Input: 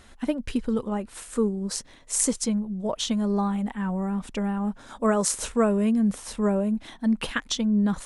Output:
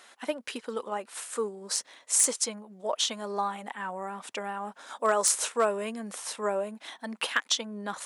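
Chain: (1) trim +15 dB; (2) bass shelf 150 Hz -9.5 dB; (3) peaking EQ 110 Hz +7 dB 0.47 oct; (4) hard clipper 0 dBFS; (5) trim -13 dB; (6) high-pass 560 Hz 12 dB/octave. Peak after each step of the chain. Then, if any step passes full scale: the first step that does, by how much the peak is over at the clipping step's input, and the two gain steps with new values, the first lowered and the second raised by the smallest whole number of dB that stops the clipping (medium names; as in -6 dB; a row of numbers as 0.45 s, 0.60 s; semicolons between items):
+9.0 dBFS, +9.0 dBFS, +9.0 dBFS, 0.0 dBFS, -13.0 dBFS, -10.0 dBFS; step 1, 9.0 dB; step 1 +6 dB, step 5 -4 dB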